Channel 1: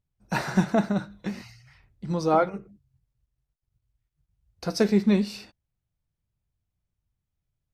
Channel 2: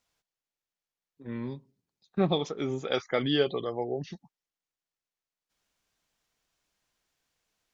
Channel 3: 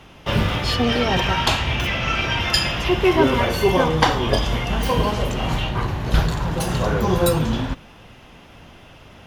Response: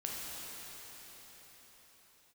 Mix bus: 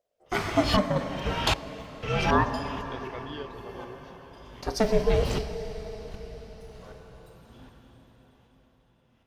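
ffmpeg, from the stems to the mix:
-filter_complex "[0:a]aeval=exprs='val(0)*sin(2*PI*400*n/s+400*0.45/0.31*sin(2*PI*0.31*n/s))':channel_layout=same,volume=-1.5dB,asplit=3[link_01][link_02][link_03];[link_02]volume=-5.5dB[link_04];[1:a]volume=-14dB[link_05];[2:a]aeval=exprs='val(0)*pow(10,-33*if(lt(mod(-1.3*n/s,1),2*abs(-1.3)/1000),1-mod(-1.3*n/s,1)/(2*abs(-1.3)/1000),(mod(-1.3*n/s,1)-2*abs(-1.3)/1000)/(1-2*abs(-1.3)/1000))/20)':channel_layout=same,volume=-4dB,asplit=2[link_06][link_07];[link_07]volume=-20.5dB[link_08];[link_03]apad=whole_len=408391[link_09];[link_06][link_09]sidechaingate=range=-29dB:threshold=-60dB:ratio=16:detection=peak[link_10];[3:a]atrim=start_sample=2205[link_11];[link_04][link_08]amix=inputs=2:normalize=0[link_12];[link_12][link_11]afir=irnorm=-1:irlink=0[link_13];[link_01][link_05][link_10][link_13]amix=inputs=4:normalize=0"

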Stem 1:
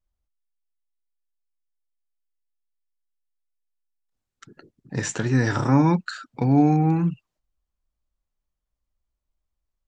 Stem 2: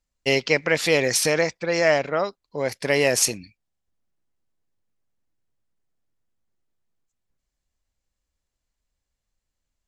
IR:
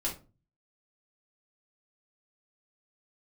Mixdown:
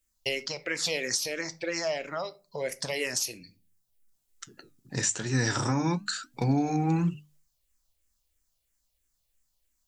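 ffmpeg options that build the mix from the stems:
-filter_complex "[0:a]highshelf=frequency=5800:gain=11,bandreject=frequency=50:width_type=h:width=6,bandreject=frequency=100:width_type=h:width=6,bandreject=frequency=150:width_type=h:width=6,bandreject=frequency=200:width_type=h:width=6,bandreject=frequency=250:width_type=h:width=6,bandreject=frequency=300:width_type=h:width=6,flanger=delay=4.5:depth=5.1:regen=-80:speed=0.95:shape=triangular,volume=0dB[link_01];[1:a]acompressor=threshold=-30dB:ratio=3,asplit=2[link_02][link_03];[link_03]afreqshift=-3[link_04];[link_02][link_04]amix=inputs=2:normalize=1,volume=-2dB,asplit=2[link_05][link_06];[link_06]volume=-12.5dB[link_07];[2:a]atrim=start_sample=2205[link_08];[link_07][link_08]afir=irnorm=-1:irlink=0[link_09];[link_01][link_05][link_09]amix=inputs=3:normalize=0,highshelf=frequency=3100:gain=11,alimiter=limit=-16dB:level=0:latency=1:release=368"

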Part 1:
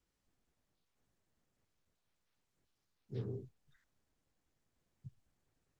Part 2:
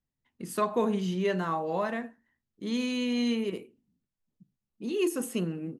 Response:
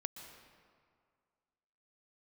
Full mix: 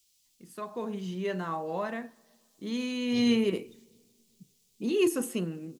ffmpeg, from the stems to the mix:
-filter_complex "[0:a]aexciter=amount=15.9:drive=5.2:freq=2500,volume=-5.5dB,asplit=2[link_01][link_02];[link_02]volume=-23dB[link_03];[1:a]dynaudnorm=framelen=270:gausssize=7:maxgain=11.5dB,volume=-7.5dB,afade=type=in:start_time=3.02:duration=0.3:silence=0.446684,asplit=2[link_04][link_05];[link_05]volume=-20dB[link_06];[2:a]atrim=start_sample=2205[link_07];[link_06][link_07]afir=irnorm=-1:irlink=0[link_08];[link_03]aecho=0:1:382|764|1146|1528|1910|2292:1|0.46|0.212|0.0973|0.0448|0.0206[link_09];[link_01][link_04][link_08][link_09]amix=inputs=4:normalize=0"

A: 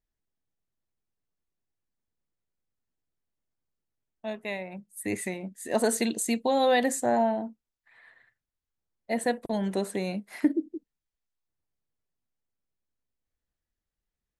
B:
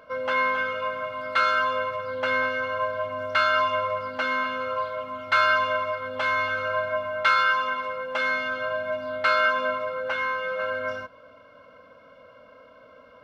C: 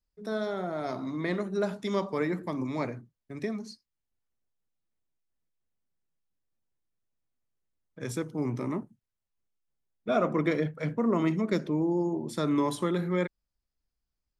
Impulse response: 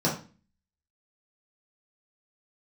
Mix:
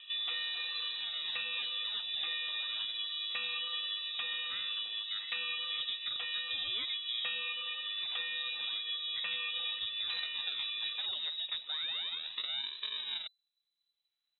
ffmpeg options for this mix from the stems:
-filter_complex "[0:a]adelay=50,volume=-4.5dB[link_01];[1:a]lowshelf=frequency=410:gain=11,volume=-4dB[link_02];[2:a]acrusher=samples=38:mix=1:aa=0.000001:lfo=1:lforange=60.8:lforate=0.33,volume=-3dB,asplit=2[link_03][link_04];[link_04]apad=whole_len=637209[link_05];[link_01][link_05]sidechaincompress=threshold=-40dB:ratio=8:attack=16:release=802[link_06];[link_06][link_02][link_03]amix=inputs=3:normalize=0,acrossover=split=450|2800[link_07][link_08][link_09];[link_07]acompressor=threshold=-39dB:ratio=4[link_10];[link_08]acompressor=threshold=-43dB:ratio=4[link_11];[link_09]acompressor=threshold=-48dB:ratio=4[link_12];[link_10][link_11][link_12]amix=inputs=3:normalize=0,lowpass=frequency=3400:width_type=q:width=0.5098,lowpass=frequency=3400:width_type=q:width=0.6013,lowpass=frequency=3400:width_type=q:width=0.9,lowpass=frequency=3400:width_type=q:width=2.563,afreqshift=-4000"

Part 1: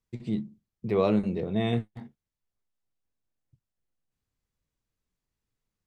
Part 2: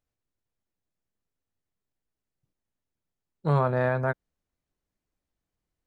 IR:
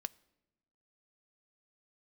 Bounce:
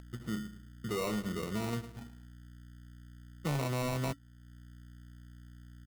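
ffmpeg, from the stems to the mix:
-filter_complex "[0:a]aeval=exprs='val(0)+0.00562*(sin(2*PI*60*n/s)+sin(2*PI*2*60*n/s)/2+sin(2*PI*3*60*n/s)/3+sin(2*PI*4*60*n/s)/4+sin(2*PI*5*60*n/s)/5)':channel_layout=same,volume=20dB,asoftclip=hard,volume=-20dB,volume=-5.5dB,asplit=2[link_01][link_02];[link_02]volume=-15dB[link_03];[1:a]acrossover=split=170|3000[link_04][link_05][link_06];[link_05]acompressor=threshold=-33dB:ratio=1.5[link_07];[link_04][link_07][link_06]amix=inputs=3:normalize=0,equalizer=frequency=280:width_type=o:width=0.21:gain=13.5,asoftclip=type=tanh:threshold=-23dB,volume=0.5dB,asplit=2[link_08][link_09];[link_09]apad=whole_len=258600[link_10];[link_01][link_10]sidechaincompress=threshold=-34dB:ratio=4:attack=16:release=825[link_11];[link_03]aecho=0:1:109|218|327|436|545:1|0.35|0.122|0.0429|0.015[link_12];[link_11][link_08][link_12]amix=inputs=3:normalize=0,acompressor=mode=upward:threshold=-49dB:ratio=2.5,acrusher=samples=27:mix=1:aa=0.000001,acompressor=threshold=-31dB:ratio=6"

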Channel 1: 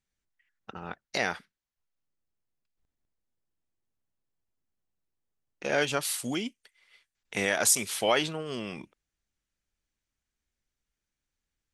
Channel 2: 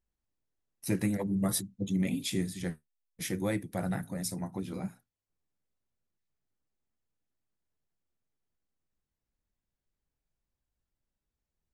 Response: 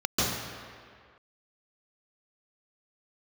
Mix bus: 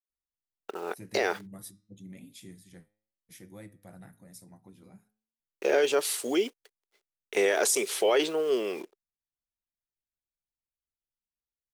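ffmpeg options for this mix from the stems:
-filter_complex "[0:a]agate=range=-33dB:threshold=-52dB:ratio=3:detection=peak,acrusher=bits=9:dc=4:mix=0:aa=0.000001,highpass=frequency=400:width_type=q:width=4.8,volume=0.5dB[link_01];[1:a]highshelf=frequency=9000:gain=6.5,flanger=delay=8.6:depth=1.4:regen=89:speed=0.94:shape=triangular,adelay=100,volume=-12dB[link_02];[link_01][link_02]amix=inputs=2:normalize=0,alimiter=limit=-15.5dB:level=0:latency=1:release=11"

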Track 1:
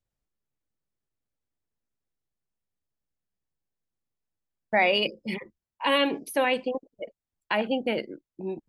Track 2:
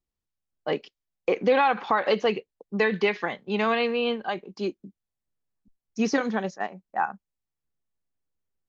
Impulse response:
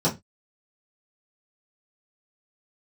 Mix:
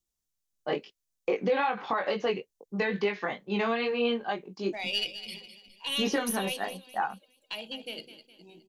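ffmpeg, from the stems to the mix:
-filter_complex "[0:a]equalizer=frequency=6400:width=1.5:gain=3,aexciter=amount=10.2:drive=7.2:freq=2800,aeval=exprs='1.33*(cos(1*acos(clip(val(0)/1.33,-1,1)))-cos(1*PI/2))+0.0668*(cos(4*acos(clip(val(0)/1.33,-1,1)))-cos(4*PI/2))':channel_layout=same,volume=-19dB,asplit=3[link_01][link_02][link_03];[link_02]volume=-22dB[link_04];[link_03]volume=-12dB[link_05];[1:a]flanger=delay=19.5:depth=2.2:speed=2.3,volume=0.5dB[link_06];[2:a]atrim=start_sample=2205[link_07];[link_04][link_07]afir=irnorm=-1:irlink=0[link_08];[link_05]aecho=0:1:207|414|621|828|1035|1242:1|0.44|0.194|0.0852|0.0375|0.0165[link_09];[link_01][link_06][link_08][link_09]amix=inputs=4:normalize=0,alimiter=limit=-17.5dB:level=0:latency=1:release=149"

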